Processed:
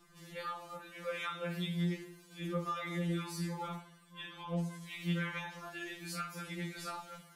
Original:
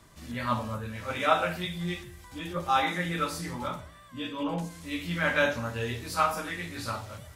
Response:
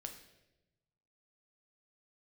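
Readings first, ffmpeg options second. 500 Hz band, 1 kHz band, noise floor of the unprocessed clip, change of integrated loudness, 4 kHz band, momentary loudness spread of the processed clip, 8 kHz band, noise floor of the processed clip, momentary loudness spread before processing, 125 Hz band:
−11.0 dB, −13.5 dB, −52 dBFS, −9.0 dB, −9.0 dB, 10 LU, −7.5 dB, −60 dBFS, 12 LU, −3.5 dB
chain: -filter_complex "[0:a]acompressor=threshold=-29dB:ratio=5,asplit=2[link_01][link_02];[1:a]atrim=start_sample=2205,atrim=end_sample=3528[link_03];[link_02][link_03]afir=irnorm=-1:irlink=0,volume=-2.5dB[link_04];[link_01][link_04]amix=inputs=2:normalize=0,afftfilt=real='re*2.83*eq(mod(b,8),0)':imag='im*2.83*eq(mod(b,8),0)':win_size=2048:overlap=0.75,volume=-7.5dB"

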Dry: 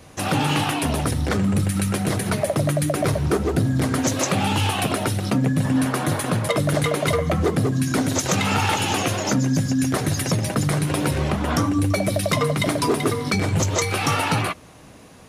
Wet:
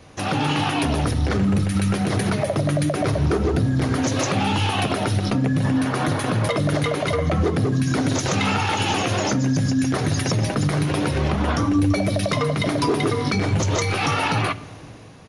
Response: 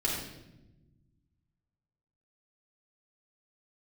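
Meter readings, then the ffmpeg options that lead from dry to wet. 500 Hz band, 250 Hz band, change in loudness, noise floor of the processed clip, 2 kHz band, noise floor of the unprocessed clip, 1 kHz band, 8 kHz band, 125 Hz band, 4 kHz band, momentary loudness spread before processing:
0.0 dB, +0.5 dB, 0.0 dB, −38 dBFS, 0.0 dB, −45 dBFS, +0.5 dB, −4.0 dB, +0.5 dB, 0.0 dB, 2 LU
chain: -filter_complex "[0:a]equalizer=frequency=8100:width=4.2:gain=-15,dynaudnorm=framelen=210:gausssize=7:maxgain=11.5dB,alimiter=limit=-12dB:level=0:latency=1:release=210,asplit=2[link_01][link_02];[1:a]atrim=start_sample=2205[link_03];[link_02][link_03]afir=irnorm=-1:irlink=0,volume=-22dB[link_04];[link_01][link_04]amix=inputs=2:normalize=0,aresample=22050,aresample=44100,volume=-1dB"

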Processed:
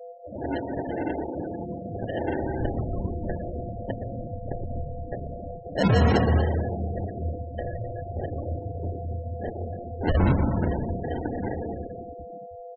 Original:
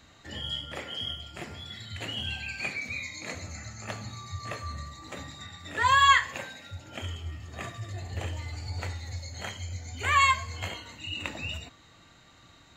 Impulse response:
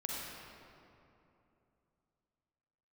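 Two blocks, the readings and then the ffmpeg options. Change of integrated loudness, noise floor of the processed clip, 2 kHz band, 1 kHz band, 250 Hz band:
+1.5 dB, −41 dBFS, −9.0 dB, −5.0 dB, +17.5 dB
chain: -filter_complex "[0:a]aeval=exprs='val(0)+0.00631*sin(2*PI*500*n/s)':channel_layout=same,lowshelf=frequency=140:gain=-6.5,acontrast=81,alimiter=limit=-11.5dB:level=0:latency=1:release=126,acompressor=mode=upward:threshold=-37dB:ratio=2.5,aresample=8000,aresample=44100,acrusher=samples=37:mix=1:aa=0.000001,asplit=2[link_01][link_02];[link_02]adelay=26,volume=-12.5dB[link_03];[link_01][link_03]amix=inputs=2:normalize=0,asplit=2[link_04][link_05];[1:a]atrim=start_sample=2205,adelay=119[link_06];[link_05][link_06]afir=irnorm=-1:irlink=0,volume=-3.5dB[link_07];[link_04][link_07]amix=inputs=2:normalize=0,afftfilt=real='re*gte(hypot(re,im),0.0631)':imag='im*gte(hypot(re,im),0.0631)':win_size=1024:overlap=0.75,volume=-1.5dB"

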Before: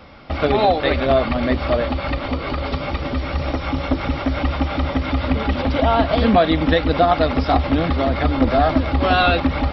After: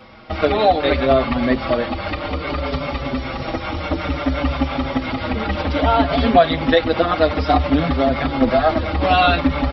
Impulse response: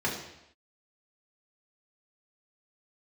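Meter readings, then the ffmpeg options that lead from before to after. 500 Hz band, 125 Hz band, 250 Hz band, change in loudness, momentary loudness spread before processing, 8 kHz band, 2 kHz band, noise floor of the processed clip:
+1.0 dB, −2.0 dB, 0.0 dB, +0.5 dB, 8 LU, can't be measured, +0.5 dB, −28 dBFS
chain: -filter_complex "[0:a]lowshelf=frequency=99:gain=-5.5,asplit=2[link_01][link_02];[link_02]adelay=5.7,afreqshift=-0.59[link_03];[link_01][link_03]amix=inputs=2:normalize=1,volume=4dB"

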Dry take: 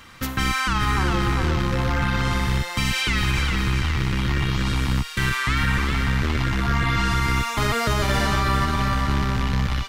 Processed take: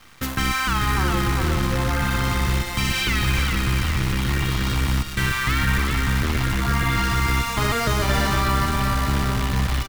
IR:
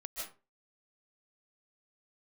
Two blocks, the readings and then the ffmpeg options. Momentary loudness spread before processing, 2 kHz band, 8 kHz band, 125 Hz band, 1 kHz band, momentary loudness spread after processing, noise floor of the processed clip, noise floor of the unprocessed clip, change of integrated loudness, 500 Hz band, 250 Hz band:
2 LU, +0.5 dB, +3.5 dB, +0.5 dB, +0.5 dB, 2 LU, −29 dBFS, −31 dBFS, +0.5 dB, +0.5 dB, 0.0 dB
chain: -filter_complex "[0:a]acrusher=bits=6:dc=4:mix=0:aa=0.000001,asplit=2[link_01][link_02];[link_02]adelay=1399,volume=-13dB,highshelf=frequency=4000:gain=-31.5[link_03];[link_01][link_03]amix=inputs=2:normalize=0,asplit=2[link_04][link_05];[1:a]atrim=start_sample=2205,adelay=148[link_06];[link_05][link_06]afir=irnorm=-1:irlink=0,volume=-14dB[link_07];[link_04][link_07]amix=inputs=2:normalize=0"

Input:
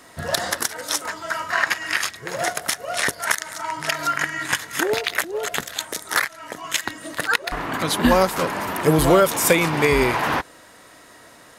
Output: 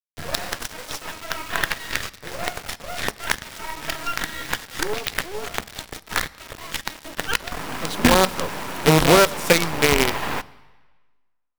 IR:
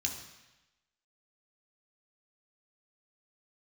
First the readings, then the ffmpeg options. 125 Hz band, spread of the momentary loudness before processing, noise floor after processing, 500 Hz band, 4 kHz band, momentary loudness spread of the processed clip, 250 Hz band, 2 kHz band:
+0.5 dB, 10 LU, −60 dBFS, −1.5 dB, +1.0 dB, 15 LU, −1.0 dB, −2.5 dB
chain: -filter_complex "[0:a]lowpass=frequency=2600:poles=1,acrusher=bits=3:dc=4:mix=0:aa=0.000001,asplit=2[link_01][link_02];[1:a]atrim=start_sample=2205,asetrate=35280,aresample=44100[link_03];[link_02][link_03]afir=irnorm=-1:irlink=0,volume=-18dB[link_04];[link_01][link_04]amix=inputs=2:normalize=0"

